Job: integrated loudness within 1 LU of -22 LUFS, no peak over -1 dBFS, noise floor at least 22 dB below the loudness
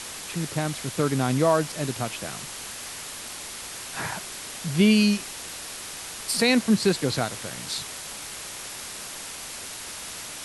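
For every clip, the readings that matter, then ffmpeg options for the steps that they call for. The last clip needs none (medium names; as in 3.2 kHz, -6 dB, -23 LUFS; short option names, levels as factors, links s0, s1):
noise floor -38 dBFS; noise floor target -49 dBFS; loudness -27.0 LUFS; peak level -9.0 dBFS; loudness target -22.0 LUFS
-> -af "afftdn=nr=11:nf=-38"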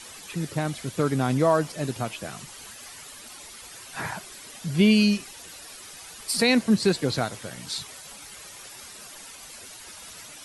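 noise floor -44 dBFS; noise floor target -47 dBFS
-> -af "afftdn=nr=6:nf=-44"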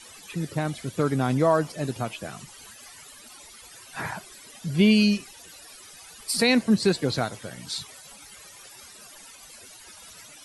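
noise floor -48 dBFS; loudness -25.0 LUFS; peak level -9.0 dBFS; loudness target -22.0 LUFS
-> -af "volume=1.41"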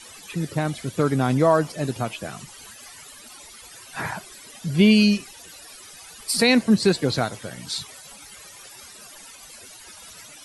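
loudness -22.0 LUFS; peak level -6.0 dBFS; noise floor -45 dBFS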